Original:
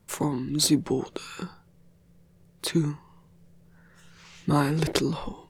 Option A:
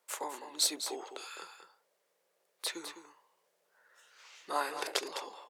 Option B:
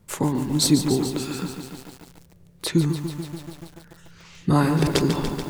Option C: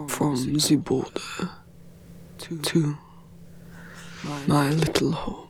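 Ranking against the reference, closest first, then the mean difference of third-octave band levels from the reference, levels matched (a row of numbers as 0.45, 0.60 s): C, B, A; 5.0, 7.5, 10.5 dB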